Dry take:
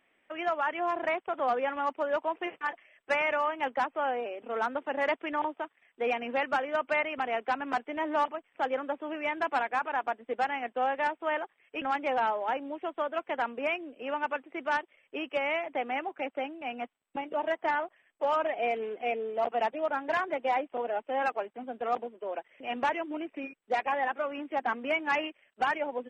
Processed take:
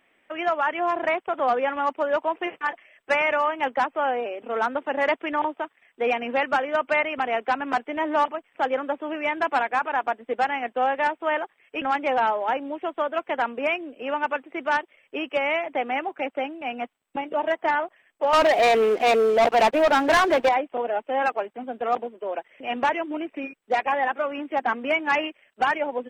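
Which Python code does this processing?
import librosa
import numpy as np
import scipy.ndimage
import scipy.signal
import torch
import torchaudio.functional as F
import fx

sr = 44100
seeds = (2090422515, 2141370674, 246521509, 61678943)

y = fx.leveller(x, sr, passes=3, at=(18.33, 20.49))
y = F.gain(torch.from_numpy(y), 6.0).numpy()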